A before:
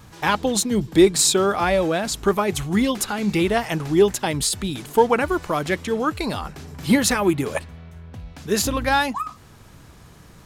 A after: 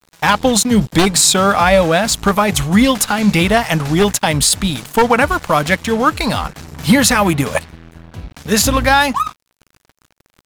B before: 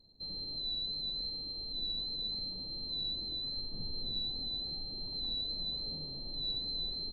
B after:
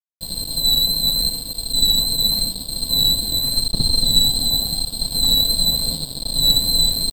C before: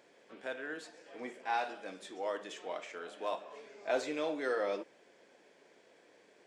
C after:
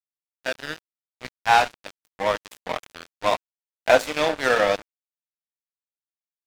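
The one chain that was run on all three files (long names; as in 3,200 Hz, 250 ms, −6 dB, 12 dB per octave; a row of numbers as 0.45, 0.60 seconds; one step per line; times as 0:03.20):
wavefolder on the positive side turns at −9 dBFS
parametric band 370 Hz −14.5 dB 0.38 octaves
dead-zone distortion −40 dBFS
boost into a limiter +12 dB
normalise the peak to −1.5 dBFS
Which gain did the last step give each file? −0.5, +15.0, +8.0 decibels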